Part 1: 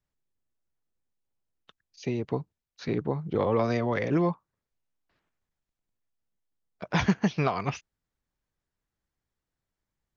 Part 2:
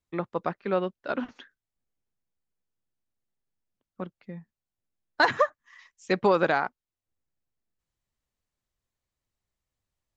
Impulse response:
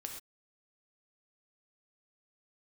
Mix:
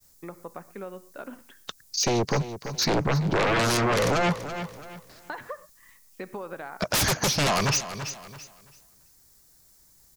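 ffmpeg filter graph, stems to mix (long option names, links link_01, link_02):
-filter_complex "[0:a]aexciter=amount=5.4:drive=5.8:freq=4300,aeval=exprs='0.266*sin(PI/2*6.31*val(0)/0.266)':channel_layout=same,volume=-0.5dB,asplit=2[link_01][link_02];[link_02]volume=-14.5dB[link_03];[1:a]lowpass=3000,acompressor=threshold=-35dB:ratio=2,adelay=100,volume=-6dB,asplit=2[link_04][link_05];[link_05]volume=-6.5dB[link_06];[2:a]atrim=start_sample=2205[link_07];[link_06][link_07]afir=irnorm=-1:irlink=0[link_08];[link_03]aecho=0:1:334|668|1002|1336:1|0.23|0.0529|0.0122[link_09];[link_01][link_04][link_08][link_09]amix=inputs=4:normalize=0,agate=range=-33dB:threshold=-55dB:ratio=3:detection=peak,acompressor=threshold=-35dB:ratio=1.5"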